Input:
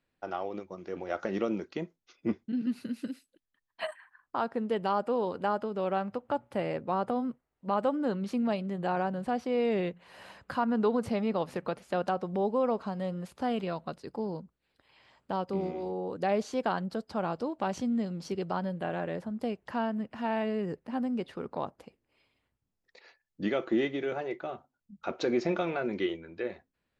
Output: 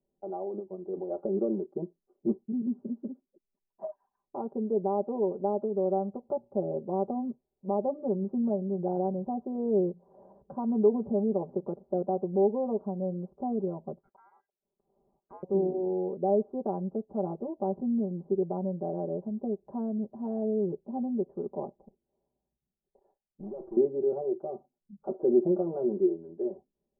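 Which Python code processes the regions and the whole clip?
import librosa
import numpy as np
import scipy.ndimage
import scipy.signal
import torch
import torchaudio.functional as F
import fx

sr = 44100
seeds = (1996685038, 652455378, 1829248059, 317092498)

y = fx.chain(x, sr, fx.lowpass(hz=2300.0, slope=12),
    fx.ring_mod(carrier_hz=1800.0), at=(13.99, 15.43))
y = fx.chain(y, sr, fx.comb(ms=1.2, depth=0.36),
    fx.tube_stage(drive_db=38.0, bias=0.6), at=(21.77, 23.77))
y = scipy.signal.sosfilt(scipy.signal.butter(6, 830.0, 'lowpass', fs=sr, output='sos'), y)
y = fx.peak_eq(y, sr, hz=370.0, db=7.5, octaves=0.95)
y = y + 0.95 * np.pad(y, (int(5.1 * sr / 1000.0), 0))[:len(y)]
y = F.gain(torch.from_numpy(y), -5.5).numpy()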